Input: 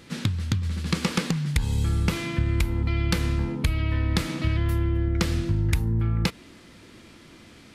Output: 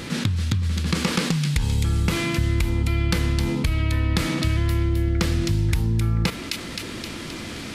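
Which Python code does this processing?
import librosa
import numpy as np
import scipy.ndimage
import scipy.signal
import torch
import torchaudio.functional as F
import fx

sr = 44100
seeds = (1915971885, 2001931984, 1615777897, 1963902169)

y = fx.echo_wet_highpass(x, sr, ms=262, feedback_pct=46, hz=2700.0, wet_db=-5.0)
y = fx.env_flatten(y, sr, amount_pct=50)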